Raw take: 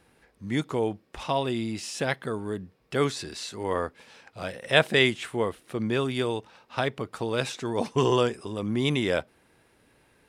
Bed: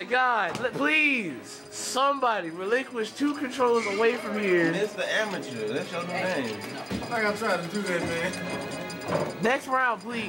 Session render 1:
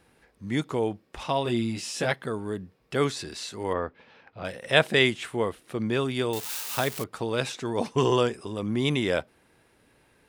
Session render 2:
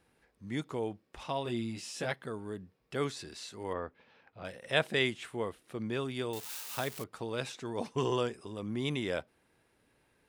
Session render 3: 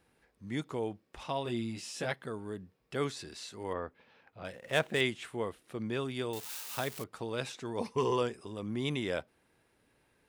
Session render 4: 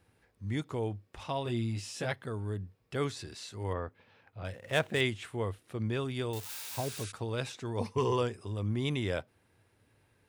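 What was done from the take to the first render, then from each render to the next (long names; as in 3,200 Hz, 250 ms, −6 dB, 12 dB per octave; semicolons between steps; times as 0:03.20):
0:01.44–0:02.12: double-tracking delay 17 ms −4 dB; 0:03.73–0:04.45: high-frequency loss of the air 270 metres; 0:06.33–0:07.04: spike at every zero crossing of −23 dBFS
level −8.5 dB
0:04.53–0:05.01: running median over 9 samples; 0:07.79–0:08.22: EQ curve with evenly spaced ripples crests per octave 0.88, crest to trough 7 dB
0:06.57–0:07.09: healed spectral selection 1,100–11,000 Hz before; parametric band 99 Hz +15 dB 0.51 octaves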